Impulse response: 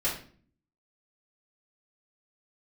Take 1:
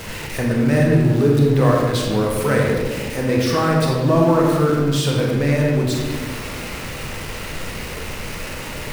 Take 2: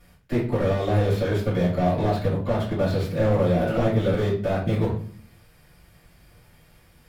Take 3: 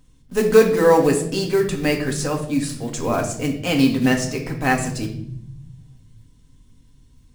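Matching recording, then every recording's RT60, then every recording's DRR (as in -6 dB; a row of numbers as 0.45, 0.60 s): 2; not exponential, 0.45 s, 0.75 s; -1.5, -9.0, 1.0 dB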